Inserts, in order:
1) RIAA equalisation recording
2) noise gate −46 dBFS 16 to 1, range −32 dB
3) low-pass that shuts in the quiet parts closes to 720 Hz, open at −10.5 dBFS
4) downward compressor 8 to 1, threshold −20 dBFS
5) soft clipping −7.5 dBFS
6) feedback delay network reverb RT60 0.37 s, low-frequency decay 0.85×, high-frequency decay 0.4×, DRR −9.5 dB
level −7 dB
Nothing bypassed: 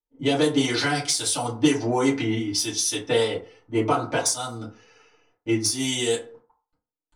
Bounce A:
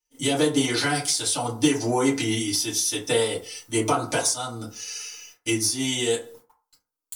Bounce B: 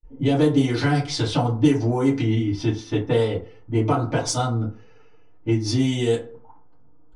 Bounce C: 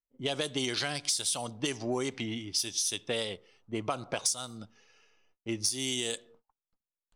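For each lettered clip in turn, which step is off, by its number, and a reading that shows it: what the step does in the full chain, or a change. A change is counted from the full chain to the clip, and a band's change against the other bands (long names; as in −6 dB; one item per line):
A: 3, 8 kHz band +2.0 dB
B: 1, 125 Hz band +11.5 dB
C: 6, change in momentary loudness spread +2 LU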